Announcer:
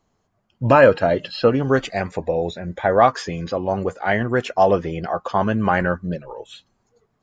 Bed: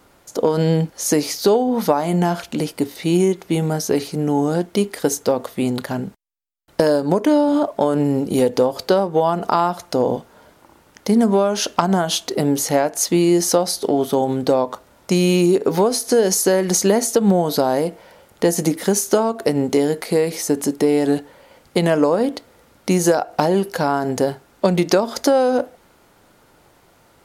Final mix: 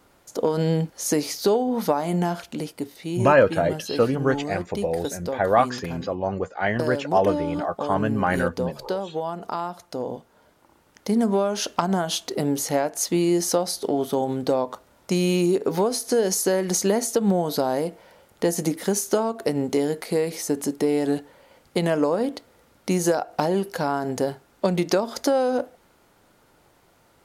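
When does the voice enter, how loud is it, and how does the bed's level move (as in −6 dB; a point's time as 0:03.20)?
2.55 s, −4.0 dB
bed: 0:02.15 −5 dB
0:03.12 −11.5 dB
0:10.10 −11.5 dB
0:11.26 −5.5 dB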